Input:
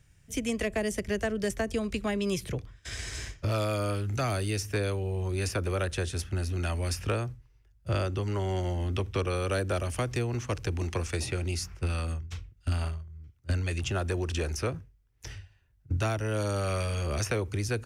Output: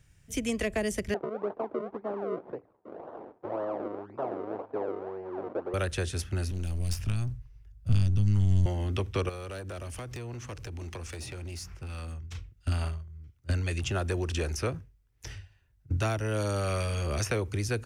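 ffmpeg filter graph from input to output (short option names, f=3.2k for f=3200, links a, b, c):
-filter_complex "[0:a]asettb=1/sr,asplit=3[a][b][c];[a]atrim=end=1.144[d];[b]atrim=start=1.14:end=5.74,asetpts=PTS-STARTPTS,afade=t=in:d=0.004:c=qsin,afade=t=out:st=4.596:d=0.004:c=qsin,acrusher=samples=36:mix=1:aa=0.000001:lfo=1:lforange=36:lforate=1.9,asuperpass=centerf=560:order=4:qfactor=0.8[e];[c]atrim=start=5.736[f];[d][e]acrossfade=d=0.004:c1=hsin:c2=qsin[g];[g][f]acrossfade=d=0.004:c1=qsin:c2=hsin,asettb=1/sr,asplit=3[h][i][j];[h]atrim=end=6.514[k];[i]atrim=start=6.51:end=8.66,asetpts=PTS-STARTPTS,afade=t=in:d=0.004:c=qsin,afade=t=out:st=2.146:d=0.004:c=qsin,acrossover=split=240|3000[l][m][n];[m]acompressor=threshold=-53dB:ratio=2:attack=3.2:release=140:knee=2.83:detection=peak[o];[l][o][n]amix=inputs=3:normalize=0,aeval=exprs='clip(val(0),-1,0.01)':c=same,asubboost=boost=8:cutoff=180[p];[j]atrim=start=8.656[q];[k][p]acrossfade=d=0.004:c1=hsin:c2=qsin[r];[r][q]acrossfade=d=0.004:c1=qsin:c2=hsin,asettb=1/sr,asplit=3[s][t][u];[s]atrim=end=9.294[v];[t]atrim=start=9.29:end=12.35,asetpts=PTS-STARTPTS,afade=t=in:d=0.004:c=qsin,afade=t=out:st=3.056:d=0.004:c=qsin,acompressor=threshold=-37dB:ratio=3:attack=3.2:release=140:knee=1:detection=peak,asoftclip=type=hard:threshold=-34dB[w];[u]atrim=start=12.346[x];[v][w]acrossfade=d=0.004:c1=hsin:c2=qsin[y];[y][x]acrossfade=d=0.004:c1=qsin:c2=hsin"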